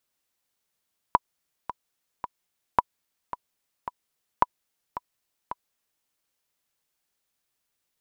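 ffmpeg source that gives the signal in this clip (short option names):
-f lavfi -i "aevalsrc='pow(10,(-4-14*gte(mod(t,3*60/110),60/110))/20)*sin(2*PI*984*mod(t,60/110))*exp(-6.91*mod(t,60/110)/0.03)':d=4.9:s=44100"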